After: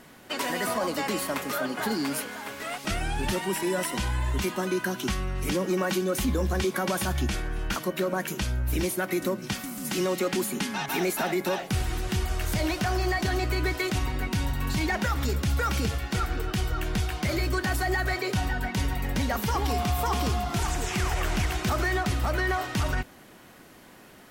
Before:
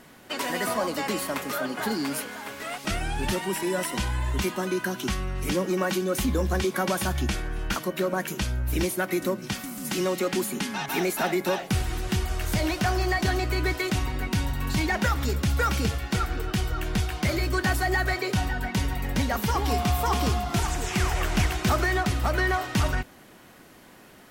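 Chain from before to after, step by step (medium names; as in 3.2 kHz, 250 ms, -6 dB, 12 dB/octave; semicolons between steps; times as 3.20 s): peak limiter -17.5 dBFS, peak gain reduction 5 dB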